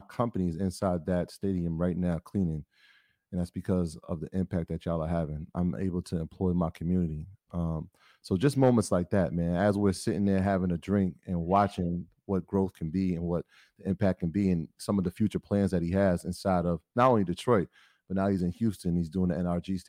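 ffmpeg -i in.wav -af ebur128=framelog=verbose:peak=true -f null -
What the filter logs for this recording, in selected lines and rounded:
Integrated loudness:
  I:         -29.6 LUFS
  Threshold: -39.8 LUFS
Loudness range:
  LRA:         5.1 LU
  Threshold: -49.8 LUFS
  LRA low:   -32.7 LUFS
  LRA high:  -27.6 LUFS
True peak:
  Peak:      -11.5 dBFS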